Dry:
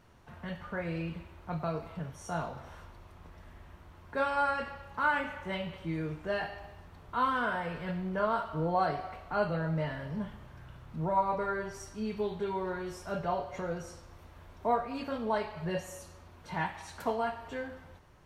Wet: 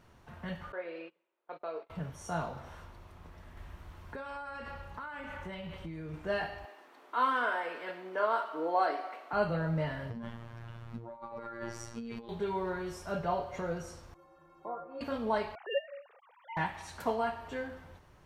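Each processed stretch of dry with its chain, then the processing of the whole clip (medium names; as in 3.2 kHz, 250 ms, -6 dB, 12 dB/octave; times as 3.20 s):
0.72–1.90 s: high-pass 400 Hz 24 dB/octave + gate -46 dBFS, range -23 dB + FFT filter 520 Hz 0 dB, 740 Hz -6 dB, 3.7 kHz -5 dB, 7.6 kHz -21 dB
3.57–6.14 s: compression 16:1, threshold -38 dBFS + bass shelf 67 Hz +9 dB + tape noise reduction on one side only encoder only
6.65–9.33 s: Chebyshev high-pass 280 Hz, order 4 + peaking EQ 2 kHz +2.5 dB 1.1 oct
10.10–12.29 s: treble shelf 8.1 kHz -9 dB + compressor with a negative ratio -39 dBFS + robot voice 116 Hz
14.14–15.01 s: low-pass that closes with the level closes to 1.2 kHz, closed at -27 dBFS + high-order bell 580 Hz +12.5 dB 3 oct + inharmonic resonator 160 Hz, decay 0.46 s, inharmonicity 0.03
15.55–16.57 s: formants replaced by sine waves + high-pass 410 Hz 24 dB/octave + upward compressor, threshold -56 dBFS
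whole clip: none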